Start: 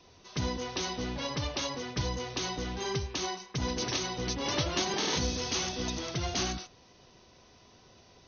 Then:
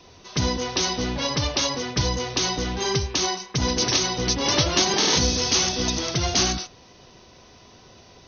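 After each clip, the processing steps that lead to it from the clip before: dynamic bell 5.3 kHz, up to +5 dB, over -47 dBFS, Q 1.6; trim +8.5 dB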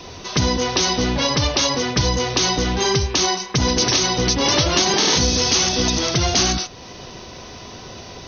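in parallel at 0 dB: peak limiter -15 dBFS, peak gain reduction 8.5 dB; on the sum: compression 1.5:1, threshold -35 dBFS, peak gain reduction 8.5 dB; trim +7 dB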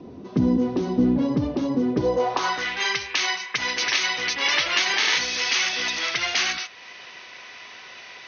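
band-pass sweep 250 Hz -> 2.1 kHz, 1.86–2.68 s; trim +6 dB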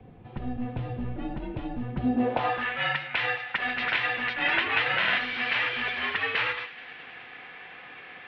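feedback echo behind a high-pass 106 ms, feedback 83%, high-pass 2.2 kHz, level -18 dB; mistuned SSB -250 Hz 380–3300 Hz; trim -2 dB

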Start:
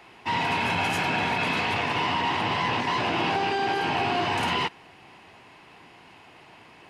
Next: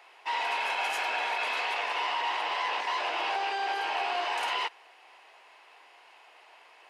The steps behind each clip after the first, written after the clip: high-pass 500 Hz 24 dB/octave; trim -4 dB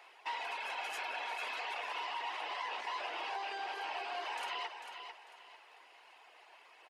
compression 2:1, threshold -37 dBFS, peak gain reduction 6 dB; reverb removal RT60 0.86 s; on a send: feedback delay 446 ms, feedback 31%, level -8 dB; on the sum: trim -2.5 dB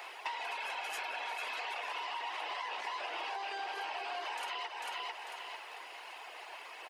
high-pass 230 Hz; treble shelf 10 kHz +6 dB; compression 10:1, threshold -48 dBFS, peak gain reduction 13.5 dB; trim +11.5 dB

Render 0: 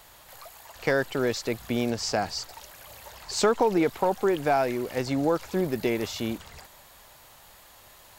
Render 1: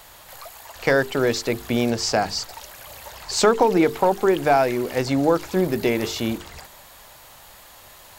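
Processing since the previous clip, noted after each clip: hum notches 50/100/150/200/250/300/350/400/450 Hz; trim +6 dB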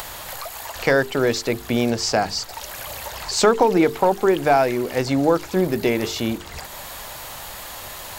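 upward compressor, threshold -25 dBFS; trim +1 dB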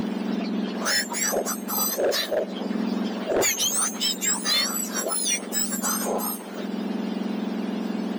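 spectrum inverted on a logarithmic axis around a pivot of 1.7 kHz; overload inside the chain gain 18 dB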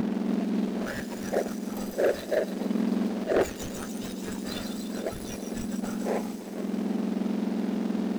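median filter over 41 samples; feedback echo behind a high-pass 146 ms, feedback 74%, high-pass 4 kHz, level -3 dB

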